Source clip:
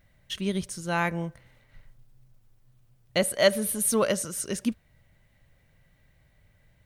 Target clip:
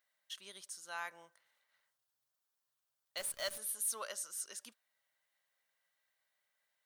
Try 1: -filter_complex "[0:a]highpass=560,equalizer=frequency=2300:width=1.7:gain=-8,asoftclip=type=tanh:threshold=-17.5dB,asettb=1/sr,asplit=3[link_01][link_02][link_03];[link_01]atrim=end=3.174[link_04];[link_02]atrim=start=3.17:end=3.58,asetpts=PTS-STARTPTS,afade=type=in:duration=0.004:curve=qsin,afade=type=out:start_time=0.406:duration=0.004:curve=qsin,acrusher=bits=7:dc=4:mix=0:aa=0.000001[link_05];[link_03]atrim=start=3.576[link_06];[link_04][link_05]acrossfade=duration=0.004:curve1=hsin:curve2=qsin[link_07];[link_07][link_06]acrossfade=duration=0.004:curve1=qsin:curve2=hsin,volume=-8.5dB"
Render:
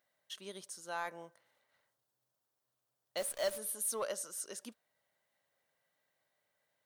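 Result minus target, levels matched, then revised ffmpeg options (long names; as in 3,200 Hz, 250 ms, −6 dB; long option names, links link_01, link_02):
500 Hz band +8.0 dB
-filter_complex "[0:a]highpass=1200,equalizer=frequency=2300:width=1.7:gain=-8,asoftclip=type=tanh:threshold=-17.5dB,asettb=1/sr,asplit=3[link_01][link_02][link_03];[link_01]atrim=end=3.174[link_04];[link_02]atrim=start=3.17:end=3.58,asetpts=PTS-STARTPTS,afade=type=in:duration=0.004:curve=qsin,afade=type=out:start_time=0.406:duration=0.004:curve=qsin,acrusher=bits=7:dc=4:mix=0:aa=0.000001[link_05];[link_03]atrim=start=3.576[link_06];[link_04][link_05]acrossfade=duration=0.004:curve1=hsin:curve2=qsin[link_07];[link_07][link_06]acrossfade=duration=0.004:curve1=qsin:curve2=hsin,volume=-8.5dB"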